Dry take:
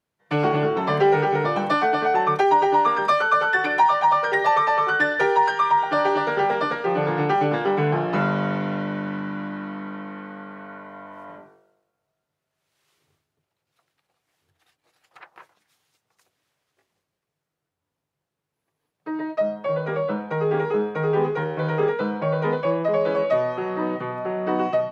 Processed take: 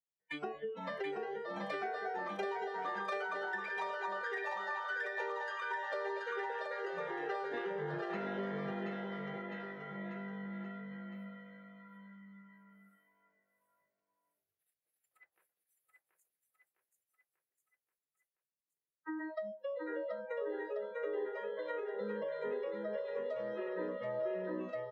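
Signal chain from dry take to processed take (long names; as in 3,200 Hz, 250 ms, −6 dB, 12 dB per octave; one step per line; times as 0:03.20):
0:19.52–0:21.96: high-pass filter 310 Hz 12 dB per octave
noise reduction from a noise print of the clip's start 27 dB
octave-band graphic EQ 500/1,000/2,000 Hz +6/−7/+6 dB
downward compressor 12 to 1, threshold −33 dBFS, peak gain reduction 21 dB
bouncing-ball delay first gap 730 ms, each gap 0.9×, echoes 5
level −5 dB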